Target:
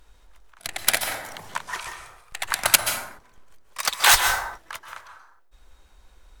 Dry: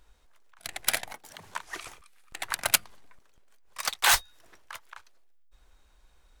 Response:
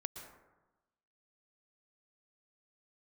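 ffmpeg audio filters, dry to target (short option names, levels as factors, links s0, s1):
-filter_complex "[0:a]asettb=1/sr,asplit=3[s0][s1][s2];[s0]atrim=end=1.584[s3];[s1]atrim=start=1.58:end=2.45,asetpts=PTS-STARTPTS,afade=t=in:d=0.004:c=qsin,afade=t=out:st=0.866:d=0.004:c=qsin,equalizer=f=290:w=1.7:g=-14[s4];[s2]atrim=start=2.446[s5];[s3][s4]acrossfade=d=0.004:c1=hsin:c2=qsin[s6];[s6][s5]acrossfade=d=0.004:c1=qsin:c2=hsin[s7];[1:a]atrim=start_sample=2205,afade=t=out:st=0.43:d=0.01,atrim=end_sample=19404,asetrate=39249,aresample=44100[s8];[s7][s8]afir=irnorm=-1:irlink=0,volume=2.66"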